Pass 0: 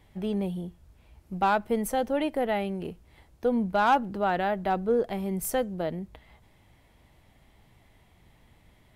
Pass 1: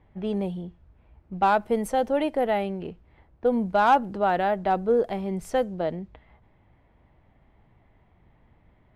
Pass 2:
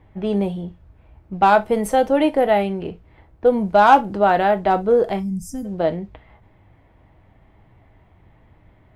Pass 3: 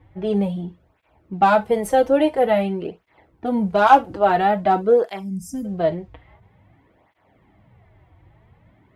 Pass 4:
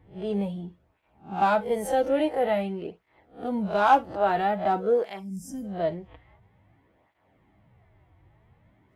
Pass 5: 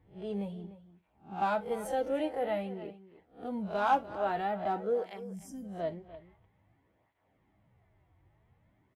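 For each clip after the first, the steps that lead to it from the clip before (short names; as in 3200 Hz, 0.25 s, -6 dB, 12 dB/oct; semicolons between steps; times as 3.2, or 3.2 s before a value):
low-pass opened by the level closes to 1600 Hz, open at -22.5 dBFS; dynamic EQ 650 Hz, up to +4 dB, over -35 dBFS, Q 0.73
spectral gain 5.2–5.65, 280–4700 Hz -26 dB; non-linear reverb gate 90 ms falling, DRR 9 dB; gain +6.5 dB
tape flanging out of phase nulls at 0.49 Hz, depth 5.1 ms; gain +1.5 dB
spectral swells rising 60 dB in 0.32 s; gain -7.5 dB
outdoor echo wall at 51 m, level -15 dB; gain -8 dB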